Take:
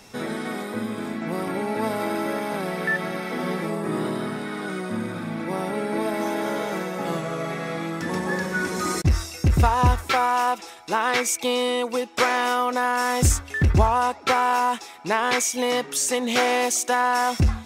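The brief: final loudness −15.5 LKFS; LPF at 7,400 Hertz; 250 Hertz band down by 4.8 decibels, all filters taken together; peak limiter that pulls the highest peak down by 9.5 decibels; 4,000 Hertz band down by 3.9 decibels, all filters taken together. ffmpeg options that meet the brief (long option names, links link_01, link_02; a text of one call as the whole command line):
ffmpeg -i in.wav -af "lowpass=7400,equalizer=frequency=250:width_type=o:gain=-6.5,equalizer=frequency=4000:width_type=o:gain=-5,volume=12.5dB,alimiter=limit=-4dB:level=0:latency=1" out.wav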